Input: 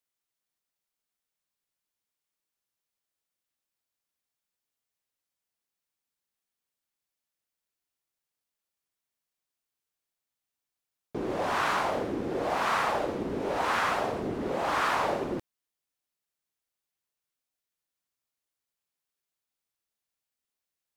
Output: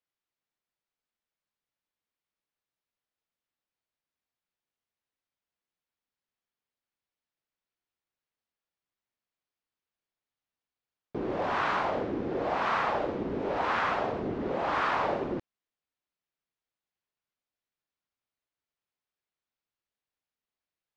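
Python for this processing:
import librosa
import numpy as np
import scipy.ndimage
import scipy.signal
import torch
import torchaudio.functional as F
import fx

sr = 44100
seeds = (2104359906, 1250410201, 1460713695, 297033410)

y = fx.air_absorb(x, sr, metres=170.0)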